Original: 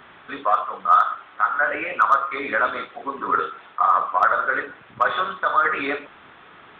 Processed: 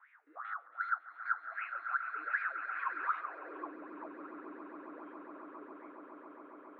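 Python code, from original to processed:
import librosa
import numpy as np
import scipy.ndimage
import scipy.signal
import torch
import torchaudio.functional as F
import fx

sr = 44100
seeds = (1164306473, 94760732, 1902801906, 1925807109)

y = fx.spec_steps(x, sr, hold_ms=100)
y = fx.doppler_pass(y, sr, speed_mps=31, closest_m=5.3, pass_at_s=2.85)
y = fx.spec_box(y, sr, start_s=0.37, length_s=1.11, low_hz=440.0, high_hz=2000.0, gain_db=8)
y = fx.dynamic_eq(y, sr, hz=2300.0, q=0.81, threshold_db=-49.0, ratio=4.0, max_db=6)
y = 10.0 ** (-29.0 / 20.0) * np.tanh(y / 10.0 ** (-29.0 / 20.0))
y = fx.wah_lfo(y, sr, hz=2.6, low_hz=300.0, high_hz=2400.0, q=9.9)
y = fx.echo_swell(y, sr, ms=138, loudest=8, wet_db=-12.5)
y = fx.filter_sweep_bandpass(y, sr, from_hz=1500.0, to_hz=230.0, start_s=3.05, end_s=3.78, q=2.0)
y = fx.band_squash(y, sr, depth_pct=40)
y = y * 10.0 ** (11.5 / 20.0)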